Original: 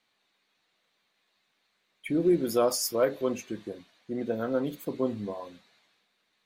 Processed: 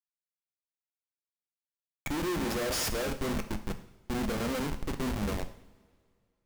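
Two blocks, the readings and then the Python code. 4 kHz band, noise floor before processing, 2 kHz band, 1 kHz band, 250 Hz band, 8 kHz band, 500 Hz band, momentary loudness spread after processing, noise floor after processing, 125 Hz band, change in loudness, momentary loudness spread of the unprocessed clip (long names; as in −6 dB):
+1.5 dB, −75 dBFS, +5.0 dB, −0.5 dB, −3.5 dB, −1.5 dB, −8.0 dB, 10 LU, below −85 dBFS, +3.0 dB, −4.0 dB, 17 LU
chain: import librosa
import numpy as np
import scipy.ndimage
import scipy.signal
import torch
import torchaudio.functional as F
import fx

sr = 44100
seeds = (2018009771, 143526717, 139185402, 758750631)

y = fx.schmitt(x, sr, flips_db=-33.5)
y = fx.rev_double_slope(y, sr, seeds[0], early_s=0.61, late_s=2.2, knee_db=-18, drr_db=7.5)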